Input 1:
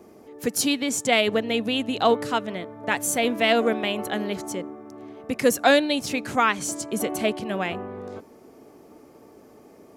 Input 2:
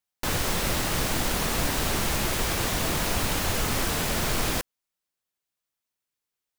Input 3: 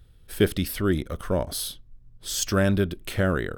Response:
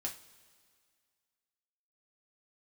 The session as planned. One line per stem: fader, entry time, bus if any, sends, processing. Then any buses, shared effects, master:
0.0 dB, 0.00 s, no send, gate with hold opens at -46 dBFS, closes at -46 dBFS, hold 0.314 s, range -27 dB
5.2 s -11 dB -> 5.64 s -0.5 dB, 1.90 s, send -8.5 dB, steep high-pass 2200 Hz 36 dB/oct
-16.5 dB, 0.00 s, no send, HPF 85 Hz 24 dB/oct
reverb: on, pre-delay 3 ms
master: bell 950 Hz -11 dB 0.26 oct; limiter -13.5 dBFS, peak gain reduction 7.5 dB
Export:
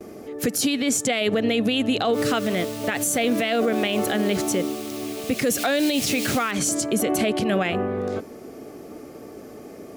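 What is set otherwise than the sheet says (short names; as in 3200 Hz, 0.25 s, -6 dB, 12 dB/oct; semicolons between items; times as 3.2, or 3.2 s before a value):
stem 1 0.0 dB -> +10.0 dB; stem 3: muted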